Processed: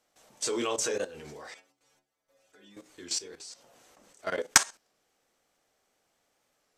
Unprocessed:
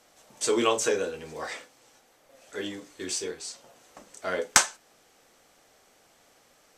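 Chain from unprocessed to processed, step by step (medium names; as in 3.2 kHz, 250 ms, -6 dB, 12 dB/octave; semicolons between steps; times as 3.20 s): dynamic bell 5.2 kHz, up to +4 dB, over -48 dBFS, Q 2.5; level held to a coarse grid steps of 15 dB; 1.54–2.77 s: inharmonic resonator 66 Hz, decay 0.44 s, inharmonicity 0.008; warped record 33 1/3 rpm, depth 100 cents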